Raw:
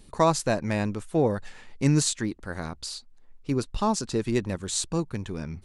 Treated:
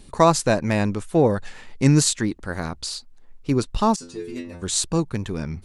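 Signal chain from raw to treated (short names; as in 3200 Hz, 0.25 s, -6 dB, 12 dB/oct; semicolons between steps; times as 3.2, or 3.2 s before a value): wow and flutter 34 cents; 3.96–4.62 metallic resonator 84 Hz, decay 0.58 s, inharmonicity 0.002; gain +5.5 dB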